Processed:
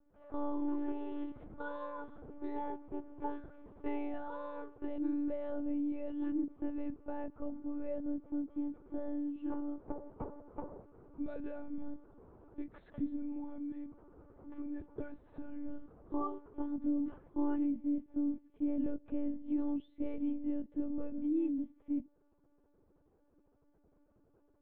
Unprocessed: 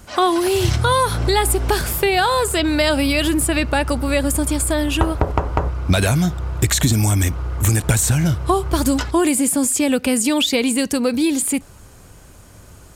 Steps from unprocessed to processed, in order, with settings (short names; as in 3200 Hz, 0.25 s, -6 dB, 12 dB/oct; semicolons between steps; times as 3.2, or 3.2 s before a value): time stretch by phase-locked vocoder 1.9×; ladder band-pass 340 Hz, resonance 25%; monotone LPC vocoder at 8 kHz 290 Hz; gain -6 dB